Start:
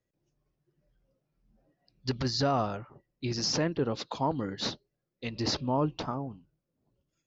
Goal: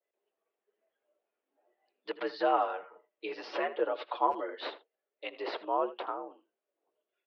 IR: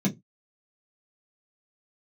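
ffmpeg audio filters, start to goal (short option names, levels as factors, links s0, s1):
-filter_complex "[0:a]asettb=1/sr,asplit=3[s0][s1][s2];[s0]atrim=end=2.164[s3];[s1]atrim=start=2.16:end=4.5,asetpts=PTS-STARTPTS,afade=t=in:d=0.004:c=qsin,afade=t=out:st=2.336:d=0.004:c=qsin,aecho=1:1:7.5:0.64,atrim=end_sample=103194[s4];[s2]atrim=start=4.496[s5];[s3][s4]acrossfade=d=0.004:c1=hsin:c2=qsin[s6];[s6][s5]acrossfade=d=0.004:c1=qsin:c2=hsin,highpass=f=350:t=q:w=0.5412,highpass=f=350:t=q:w=1.307,lowpass=f=3300:t=q:w=0.5176,lowpass=f=3300:t=q:w=0.7071,lowpass=f=3300:t=q:w=1.932,afreqshift=61,asplit=2[s7][s8];[s8]adelay=80,highpass=300,lowpass=3400,asoftclip=type=hard:threshold=0.126,volume=0.178[s9];[s7][s9]amix=inputs=2:normalize=0,adynamicequalizer=threshold=0.00794:dfrequency=1500:dqfactor=0.7:tfrequency=1500:tqfactor=0.7:attack=5:release=100:ratio=0.375:range=1.5:mode=cutabove:tftype=highshelf"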